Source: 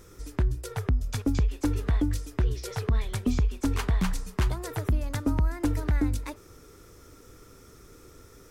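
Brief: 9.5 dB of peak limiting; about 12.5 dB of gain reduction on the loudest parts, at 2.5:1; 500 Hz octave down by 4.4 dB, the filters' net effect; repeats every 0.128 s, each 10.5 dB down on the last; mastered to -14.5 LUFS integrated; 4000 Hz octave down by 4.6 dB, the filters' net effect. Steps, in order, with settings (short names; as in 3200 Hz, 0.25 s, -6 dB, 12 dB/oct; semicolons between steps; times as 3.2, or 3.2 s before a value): bell 500 Hz -6 dB; bell 4000 Hz -6 dB; compressor 2.5:1, threshold -40 dBFS; limiter -32 dBFS; feedback echo 0.128 s, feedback 30%, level -10.5 dB; gain +29 dB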